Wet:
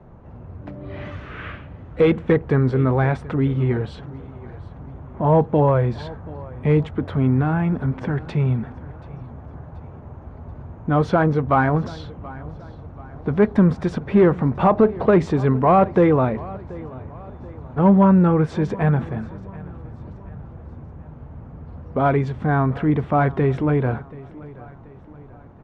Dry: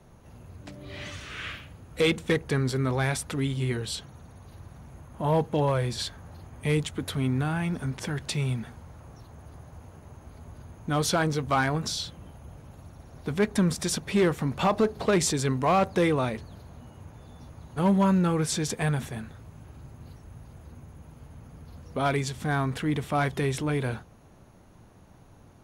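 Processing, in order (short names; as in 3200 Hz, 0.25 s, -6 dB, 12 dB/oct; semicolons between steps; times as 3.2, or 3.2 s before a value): LPF 1300 Hz 12 dB/oct; on a send: feedback echo 0.731 s, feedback 44%, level -20 dB; on the sum: gain +8.5 dB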